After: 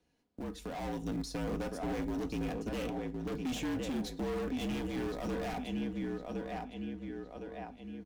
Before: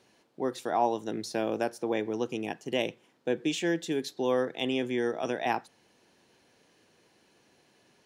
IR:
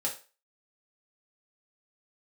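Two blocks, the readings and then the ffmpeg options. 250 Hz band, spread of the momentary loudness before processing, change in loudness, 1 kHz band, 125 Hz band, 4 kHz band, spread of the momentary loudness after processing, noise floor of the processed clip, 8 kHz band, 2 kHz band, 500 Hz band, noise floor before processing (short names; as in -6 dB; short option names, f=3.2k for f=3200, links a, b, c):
-2.0 dB, 6 LU, -7.0 dB, -9.5 dB, +3.0 dB, -7.5 dB, 9 LU, -57 dBFS, -5.5 dB, -8.0 dB, -8.5 dB, -66 dBFS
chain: -filter_complex "[0:a]asplit=2[a][b];[b]acrusher=bits=6:dc=4:mix=0:aa=0.000001,volume=-8.5dB[c];[a][c]amix=inputs=2:normalize=0,agate=range=-12dB:threshold=-57dB:ratio=16:detection=peak,asplit=2[d][e];[e]adelay=1061,lowpass=f=4.2k:p=1,volume=-8.5dB,asplit=2[f][g];[g]adelay=1061,lowpass=f=4.2k:p=1,volume=0.37,asplit=2[h][i];[i]adelay=1061,lowpass=f=4.2k:p=1,volume=0.37,asplit=2[j][k];[k]adelay=1061,lowpass=f=4.2k:p=1,volume=0.37[l];[d][f][h][j][l]amix=inputs=5:normalize=0,afreqshift=-52,aecho=1:1:4.1:0.38,asplit=2[m][n];[1:a]atrim=start_sample=2205,adelay=23[o];[n][o]afir=irnorm=-1:irlink=0,volume=-23.5dB[p];[m][p]amix=inputs=2:normalize=0,volume=29.5dB,asoftclip=hard,volume=-29.5dB,acompressor=threshold=-48dB:ratio=2,flanger=delay=2.4:depth=4.1:regen=-76:speed=0.41:shape=sinusoidal,dynaudnorm=f=510:g=3:m=5.5dB,lowshelf=f=270:g=11"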